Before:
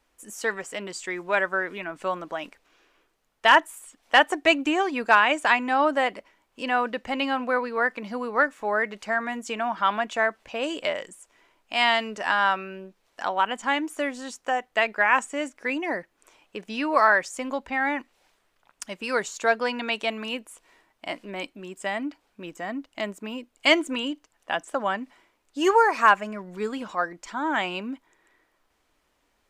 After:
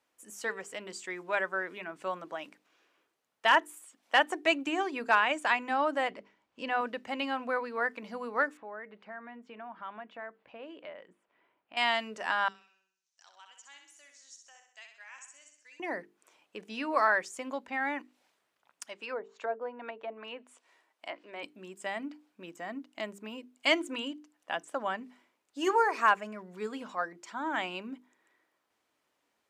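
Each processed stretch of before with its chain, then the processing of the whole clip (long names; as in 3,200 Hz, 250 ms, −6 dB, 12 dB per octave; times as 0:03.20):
0:06.10–0:06.81: low-pass filter 5,900 Hz + low-shelf EQ 150 Hz +12 dB
0:08.57–0:11.77: downward compressor 1.5 to 1, threshold −47 dBFS + high-frequency loss of the air 380 metres
0:12.48–0:15.80: resonant band-pass 6,200 Hz, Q 3.7 + flutter between parallel walls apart 11 metres, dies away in 0.62 s
0:18.84–0:21.43: high-pass filter 380 Hz + treble cut that deepens with the level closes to 690 Hz, closed at −24.5 dBFS
whole clip: high-pass filter 150 Hz 12 dB per octave; mains-hum notches 50/100/150/200/250/300/350/400/450 Hz; level −7 dB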